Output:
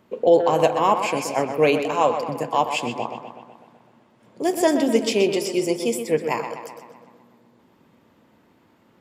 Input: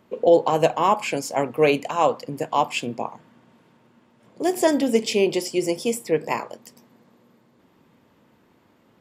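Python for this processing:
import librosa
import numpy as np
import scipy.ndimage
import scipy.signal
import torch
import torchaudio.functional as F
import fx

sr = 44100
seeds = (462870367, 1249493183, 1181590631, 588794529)

y = fx.echo_tape(x, sr, ms=126, feedback_pct=63, wet_db=-7.0, lp_hz=4200.0, drive_db=8.0, wow_cents=11)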